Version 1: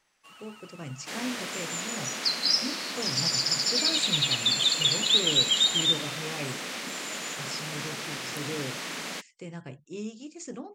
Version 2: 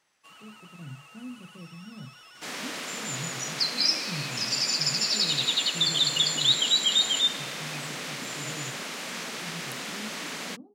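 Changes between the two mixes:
speech: add band-pass 160 Hz, Q 1.9; second sound: entry +1.35 s

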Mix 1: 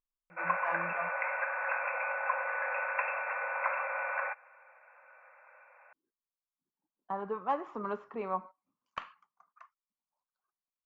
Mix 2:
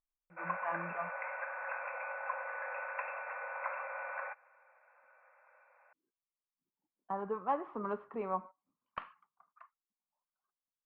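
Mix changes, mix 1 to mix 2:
background -4.5 dB; master: add air absorption 390 m

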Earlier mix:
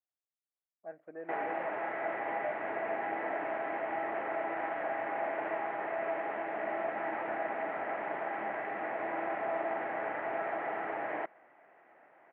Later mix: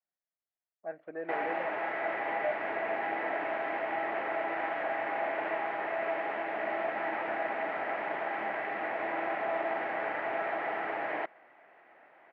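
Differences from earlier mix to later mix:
speech +4.0 dB; master: remove air absorption 450 m

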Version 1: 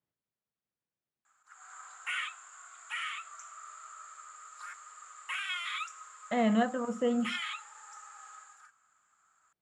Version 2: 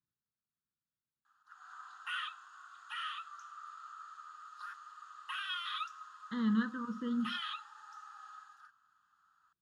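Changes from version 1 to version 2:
speech: add fixed phaser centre 2600 Hz, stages 6; master: add fixed phaser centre 2200 Hz, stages 6

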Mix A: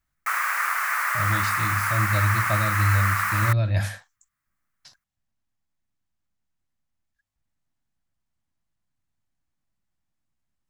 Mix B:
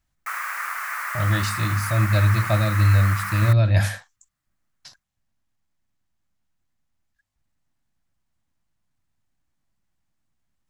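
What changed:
speech +5.0 dB; background -4.5 dB

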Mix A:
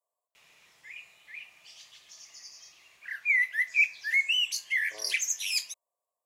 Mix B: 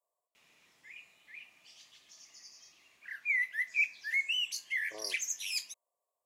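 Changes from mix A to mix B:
background -6.0 dB; master: add bell 260 Hz +9 dB 0.99 oct

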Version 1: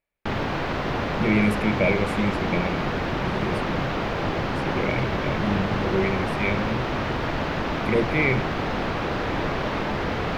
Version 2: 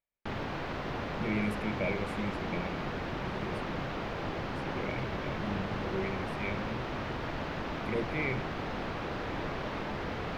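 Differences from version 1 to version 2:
speech -11.5 dB; background -10.0 dB

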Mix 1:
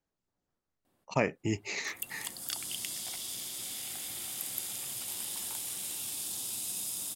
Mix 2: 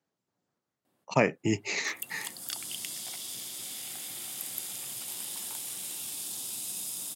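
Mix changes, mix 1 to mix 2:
speech +4.5 dB; master: add HPF 110 Hz 24 dB/oct

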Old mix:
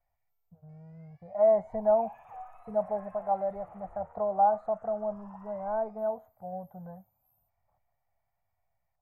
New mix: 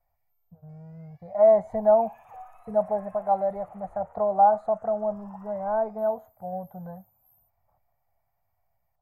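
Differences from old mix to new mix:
speech +5.0 dB; master: add high shelf 5000 Hz +10.5 dB

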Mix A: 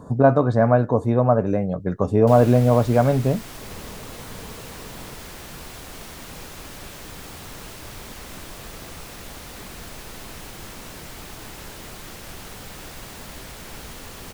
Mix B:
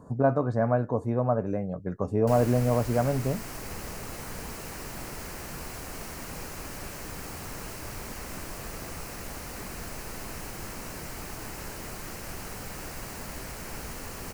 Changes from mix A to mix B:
speech -8.0 dB; master: add bell 3500 Hz -11 dB 0.4 oct

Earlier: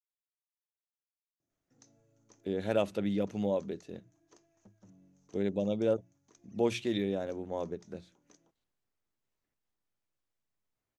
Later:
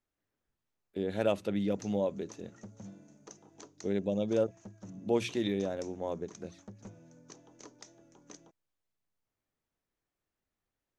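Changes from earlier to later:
speech: entry -1.50 s; background +11.5 dB

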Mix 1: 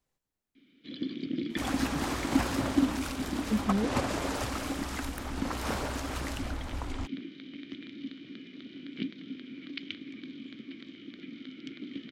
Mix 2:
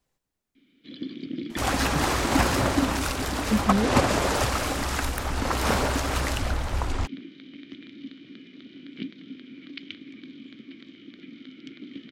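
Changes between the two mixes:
speech +5.0 dB; second sound +9.5 dB

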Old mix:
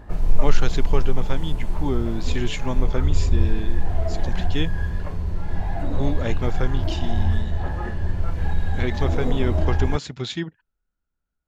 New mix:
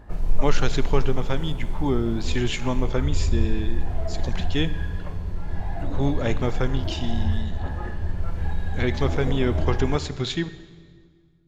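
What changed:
background -6.0 dB; reverb: on, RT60 1.8 s

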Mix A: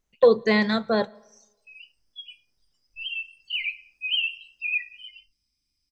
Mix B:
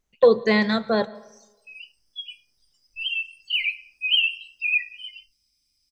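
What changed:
speech: send +8.5 dB; background: add high shelf 2900 Hz +10 dB

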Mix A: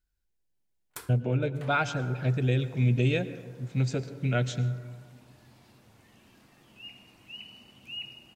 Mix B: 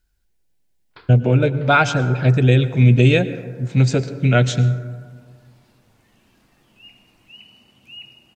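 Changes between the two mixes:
speech +12.0 dB; first sound: add steep low-pass 4800 Hz 96 dB/oct

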